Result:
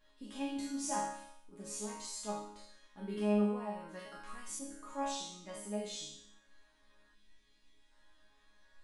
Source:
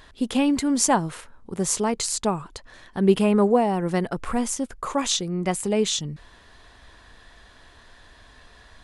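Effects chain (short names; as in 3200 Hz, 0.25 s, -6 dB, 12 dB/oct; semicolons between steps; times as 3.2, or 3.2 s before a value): spectral trails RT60 0.54 s; resonator bank G#3 sus4, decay 0.66 s; 3.99–4.59 tilt shelf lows -4.5 dB, about 1200 Hz; 7.15–7.91 spectral gain 460–1900 Hz -9 dB; gain +1 dB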